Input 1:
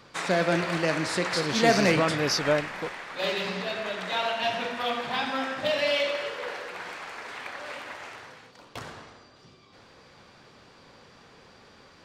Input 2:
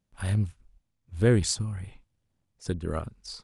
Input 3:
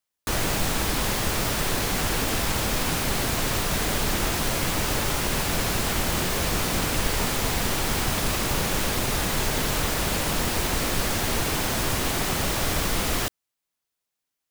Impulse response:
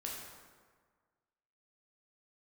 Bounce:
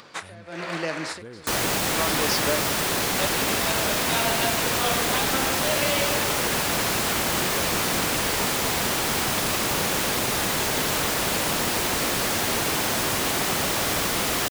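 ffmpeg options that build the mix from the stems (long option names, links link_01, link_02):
-filter_complex "[0:a]alimiter=limit=-18dB:level=0:latency=1:release=315,volume=1.5dB[link_01];[1:a]lowshelf=frequency=130:gain=-5.5,acompressor=threshold=-29dB:ratio=4,volume=-8dB,asplit=2[link_02][link_03];[2:a]adelay=1200,volume=2.5dB[link_04];[link_03]apad=whole_len=531300[link_05];[link_01][link_05]sidechaincompress=threshold=-56dB:ratio=12:attack=7.5:release=146[link_06];[link_06][link_02][link_04]amix=inputs=3:normalize=0,highpass=frequency=220:poles=1,acompressor=mode=upward:threshold=-43dB:ratio=2.5"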